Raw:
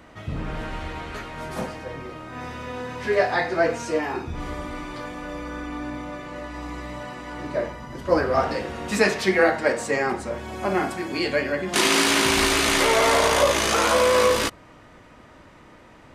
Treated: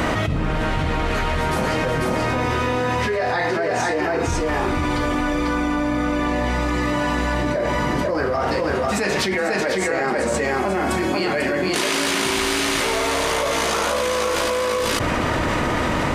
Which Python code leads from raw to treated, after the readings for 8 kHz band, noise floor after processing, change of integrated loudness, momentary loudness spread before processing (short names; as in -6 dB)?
+0.5 dB, -22 dBFS, +1.5 dB, 17 LU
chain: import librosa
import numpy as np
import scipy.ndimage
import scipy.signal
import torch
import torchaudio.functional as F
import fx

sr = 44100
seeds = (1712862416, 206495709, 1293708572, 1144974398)

y = x + 10.0 ** (-3.0 / 20.0) * np.pad(x, (int(494 * sr / 1000.0), 0))[:len(x)]
y = fx.env_flatten(y, sr, amount_pct=100)
y = y * librosa.db_to_amplitude(-7.0)